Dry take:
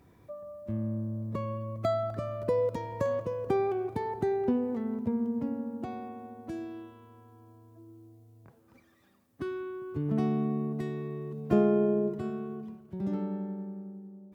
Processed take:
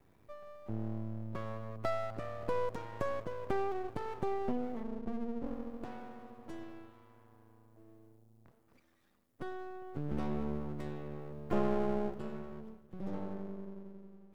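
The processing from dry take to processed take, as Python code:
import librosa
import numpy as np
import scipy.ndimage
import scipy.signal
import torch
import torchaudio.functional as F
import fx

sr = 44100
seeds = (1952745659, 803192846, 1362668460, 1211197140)

y = fx.ellip_lowpass(x, sr, hz=850.0, order=4, stop_db=40, at=(4.83, 5.47))
y = np.maximum(y, 0.0)
y = y * 10.0 ** (-3.0 / 20.0)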